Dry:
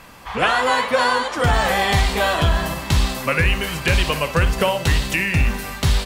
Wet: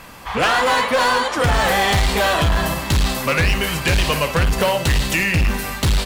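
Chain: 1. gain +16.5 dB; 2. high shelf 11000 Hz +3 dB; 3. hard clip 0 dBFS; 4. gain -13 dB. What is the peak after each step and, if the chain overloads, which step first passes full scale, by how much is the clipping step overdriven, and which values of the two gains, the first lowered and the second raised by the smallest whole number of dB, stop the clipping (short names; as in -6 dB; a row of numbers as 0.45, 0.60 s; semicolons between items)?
+10.0, +10.0, 0.0, -13.0 dBFS; step 1, 10.0 dB; step 1 +6.5 dB, step 4 -3 dB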